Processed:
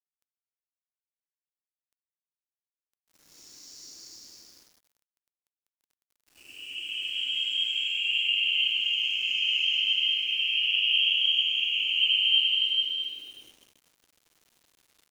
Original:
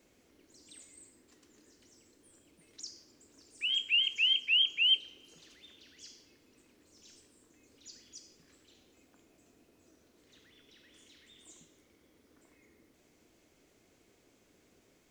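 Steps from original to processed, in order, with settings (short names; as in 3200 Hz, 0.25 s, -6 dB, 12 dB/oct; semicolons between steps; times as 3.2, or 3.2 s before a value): dynamic EQ 3700 Hz, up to +4 dB, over -39 dBFS, Q 1.3; Paulstretch 4.1×, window 0.50 s, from 1.89; sample gate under -51 dBFS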